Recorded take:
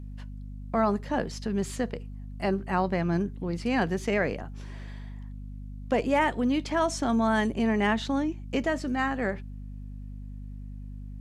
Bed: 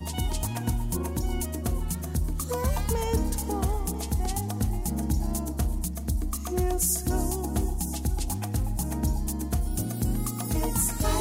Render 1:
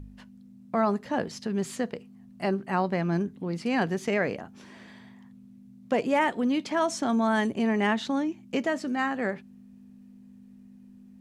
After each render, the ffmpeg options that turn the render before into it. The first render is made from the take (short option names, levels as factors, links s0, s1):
-af "bandreject=f=50:t=h:w=4,bandreject=f=100:t=h:w=4,bandreject=f=150:t=h:w=4"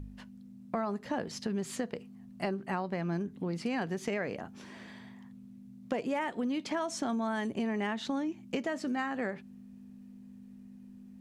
-af "acompressor=threshold=0.0316:ratio=6"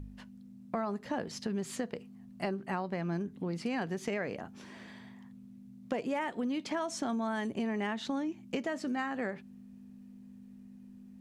-af "volume=0.891"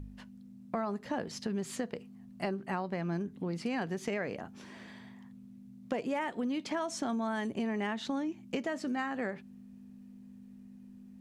-af anull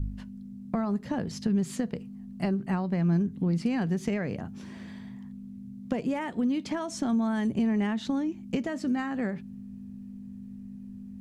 -af "bass=f=250:g=15,treble=f=4000:g=2,bandreject=f=60:t=h:w=6,bandreject=f=120:t=h:w=6"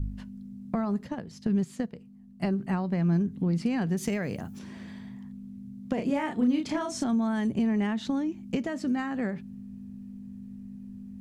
-filter_complex "[0:a]asplit=3[s0][s1][s2];[s0]afade=t=out:st=1.06:d=0.02[s3];[s1]agate=range=0.355:threshold=0.0355:ratio=16:release=100:detection=peak,afade=t=in:st=1.06:d=0.02,afade=t=out:st=2.41:d=0.02[s4];[s2]afade=t=in:st=2.41:d=0.02[s5];[s3][s4][s5]amix=inputs=3:normalize=0,asettb=1/sr,asplit=3[s6][s7][s8];[s6]atrim=end=3.974[s9];[s7]atrim=start=3.97:end=4.59,asetpts=PTS-STARTPTS,afade=t=in:d=0.004:c=qsin,afade=t=out:st=0.616:d=0.004:c=qsin,aemphasis=mode=production:type=50fm[s10];[s8]atrim=start=4.586[s11];[s9][s10]acrossfade=d=0.004:c1=hsin:c2=qsin[s12];[s12][s11]acrossfade=d=0.004:c1=qsin:c2=hsin,asettb=1/sr,asplit=3[s13][s14][s15];[s13]atrim=end=5.944[s16];[s14]atrim=start=5.94:end=7.04,asetpts=PTS-STARTPTS,afade=t=in:d=0.004:c=qsin,afade=t=out:st=1.096:d=0.004:c=qsin,asplit=2[s17][s18];[s18]adelay=32,volume=0.708[s19];[s17][s19]amix=inputs=2:normalize=0,atrim=end_sample=48510[s20];[s15]atrim=start=7.036[s21];[s16][s20]acrossfade=d=0.004:c1=hsin:c2=qsin[s22];[s22][s21]acrossfade=d=0.004:c1=qsin:c2=hsin"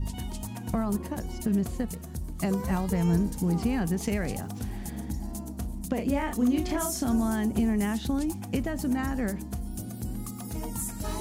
-filter_complex "[1:a]volume=0.398[s0];[0:a][s0]amix=inputs=2:normalize=0"